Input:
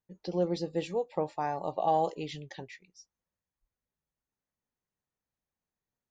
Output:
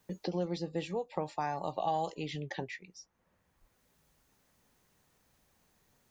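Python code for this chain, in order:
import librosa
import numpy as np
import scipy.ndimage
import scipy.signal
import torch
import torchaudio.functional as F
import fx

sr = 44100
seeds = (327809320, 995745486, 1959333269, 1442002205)

y = fx.dynamic_eq(x, sr, hz=450.0, q=0.95, threshold_db=-39.0, ratio=4.0, max_db=-6)
y = fx.band_squash(y, sr, depth_pct=70)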